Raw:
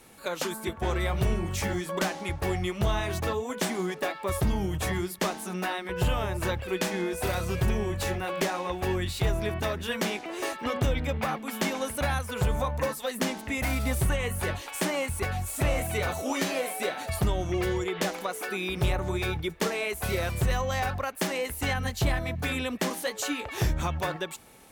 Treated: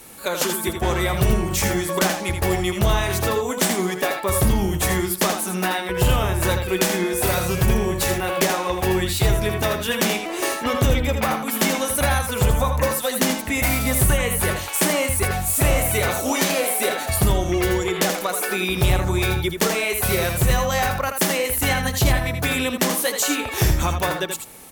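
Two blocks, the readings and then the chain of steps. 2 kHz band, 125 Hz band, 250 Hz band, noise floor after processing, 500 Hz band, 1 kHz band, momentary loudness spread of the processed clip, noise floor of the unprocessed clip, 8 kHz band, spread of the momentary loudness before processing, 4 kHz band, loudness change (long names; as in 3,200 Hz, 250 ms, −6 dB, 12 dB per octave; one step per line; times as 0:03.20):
+8.5 dB, +7.5 dB, +8.0 dB, −30 dBFS, +8.0 dB, +8.0 dB, 3 LU, −42 dBFS, +13.5 dB, 3 LU, +9.5 dB, +9.0 dB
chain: high-shelf EQ 7,800 Hz +10.5 dB
on a send: single-tap delay 81 ms −7 dB
on the sum: level +7 dB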